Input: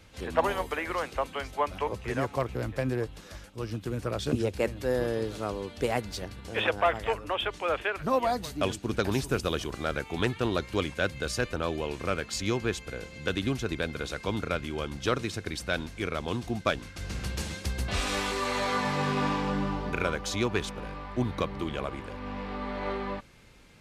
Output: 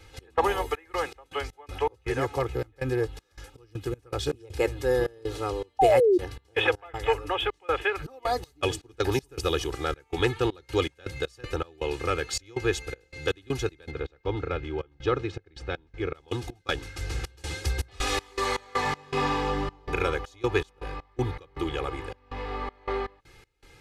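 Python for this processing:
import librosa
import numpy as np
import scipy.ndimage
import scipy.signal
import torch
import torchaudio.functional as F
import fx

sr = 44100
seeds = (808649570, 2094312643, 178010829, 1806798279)

y = x + 0.98 * np.pad(x, (int(2.4 * sr / 1000.0), 0))[:len(x)]
y = fx.step_gate(y, sr, bpm=80, pattern='x.xx.x.x.x.xx', floor_db=-24.0, edge_ms=4.5)
y = fx.spec_paint(y, sr, seeds[0], shape='fall', start_s=5.79, length_s=0.39, low_hz=340.0, high_hz=810.0, level_db=-19.0)
y = fx.spacing_loss(y, sr, db_at_10k=26, at=(13.9, 16.13), fade=0.02)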